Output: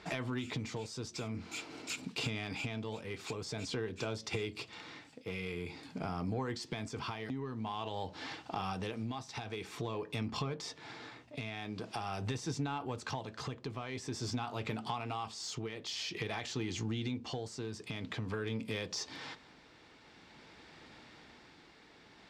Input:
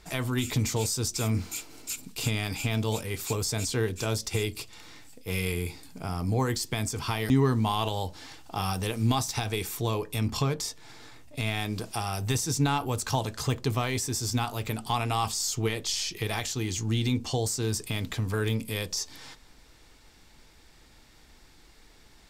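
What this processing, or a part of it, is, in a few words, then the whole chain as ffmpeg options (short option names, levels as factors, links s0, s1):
AM radio: -af "highpass=140,lowpass=3600,acompressor=threshold=0.0126:ratio=6,asoftclip=type=tanh:threshold=0.0355,tremolo=f=0.48:d=0.38,volume=1.78"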